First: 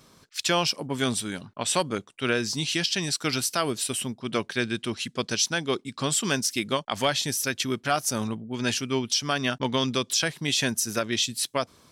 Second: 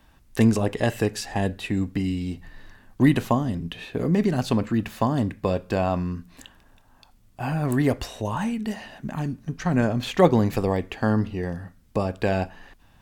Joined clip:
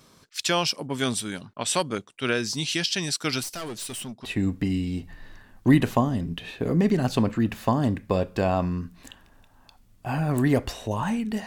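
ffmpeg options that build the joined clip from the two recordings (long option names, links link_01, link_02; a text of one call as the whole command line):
ffmpeg -i cue0.wav -i cue1.wav -filter_complex "[0:a]asettb=1/sr,asplit=3[link_01][link_02][link_03];[link_01]atrim=end=3.434[link_04];[link_02]atrim=start=3.43:end=4.25,asetpts=PTS-STARTPTS,afade=type=in:duration=0.004:curve=qsin,afade=type=out:start_time=0.816:duration=0.004:curve=qsin,aeval=exprs='(tanh(35.5*val(0)+0.2)-tanh(0.2))/35.5':channel_layout=same[link_05];[link_03]atrim=start=4.246[link_06];[link_04][link_05]acrossfade=duration=0.004:curve1=hsin:curve2=qsin[link_07];[link_07][link_06]acrossfade=duration=0.004:curve1=qsin:curve2=hsin,apad=whole_dur=11.46,atrim=end=11.46,atrim=end=4.252[link_08];[1:a]atrim=start=1.588:end=8.8[link_09];[link_08][link_09]acrossfade=duration=0.004:curve1=hsin:curve2=hsin" out.wav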